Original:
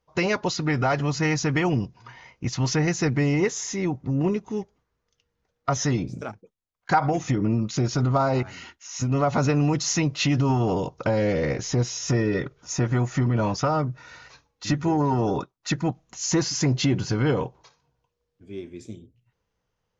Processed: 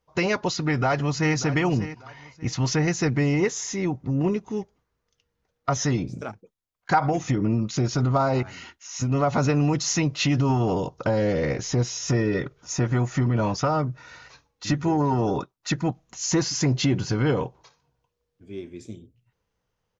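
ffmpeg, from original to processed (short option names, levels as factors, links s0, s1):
-filter_complex "[0:a]asplit=2[s0][s1];[s1]afade=t=in:st=0.63:d=0.01,afade=t=out:st=1.35:d=0.01,aecho=0:1:590|1180|1770:0.211349|0.0528372|0.0132093[s2];[s0][s2]amix=inputs=2:normalize=0,asettb=1/sr,asplit=3[s3][s4][s5];[s3]atrim=end=10.784[s6];[s4]atrim=start=10.78:end=11.38,asetpts=PTS-STARTPTS,afade=t=in:d=0.004:c=qsin,afade=t=out:st=0.596:d=0.004:c=qsin,equalizer=f=2300:w=5.1:g=-6[s7];[s5]atrim=start=11.376[s8];[s6][s7]acrossfade=d=0.004:c1=hsin:c2=qsin[s9];[s9][s8]acrossfade=d=0.004:c1=qsin:c2=hsin"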